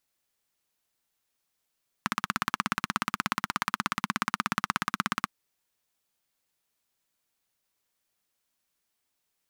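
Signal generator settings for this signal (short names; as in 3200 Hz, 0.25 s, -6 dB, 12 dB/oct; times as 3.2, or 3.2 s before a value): single-cylinder engine model, steady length 3.22 s, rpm 2000, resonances 210/1200 Hz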